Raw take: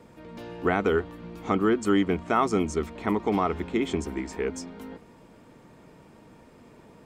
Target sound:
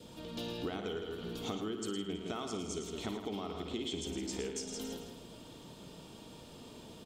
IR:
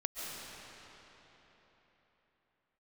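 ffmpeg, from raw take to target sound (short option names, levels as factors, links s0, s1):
-filter_complex "[0:a]highshelf=f=2600:t=q:w=3:g=7.5,asplit=2[s0][s1];[s1]aecho=0:1:162|324|486:0.316|0.0917|0.0266[s2];[s0][s2]amix=inputs=2:normalize=0,acompressor=threshold=0.0178:ratio=10,asplit=2[s3][s4];[s4]aecho=0:1:55.39|110.8:0.282|0.398[s5];[s3][s5]amix=inputs=2:normalize=0,adynamicequalizer=threshold=0.001:dfrequency=1000:dqfactor=2.9:tfrequency=1000:tqfactor=2.9:attack=5:release=100:ratio=0.375:range=2.5:mode=cutabove:tftype=bell,volume=0.891"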